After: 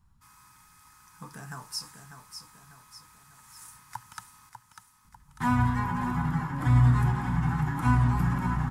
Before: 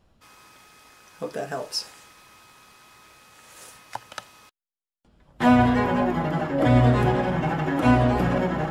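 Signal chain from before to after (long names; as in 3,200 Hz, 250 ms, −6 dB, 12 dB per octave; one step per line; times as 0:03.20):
drawn EQ curve 150 Hz 0 dB, 610 Hz −29 dB, 920 Hz −2 dB, 2,100 Hz −9 dB, 2,900 Hz −15 dB, 8,800 Hz 0 dB
repeating echo 596 ms, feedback 48%, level −8.5 dB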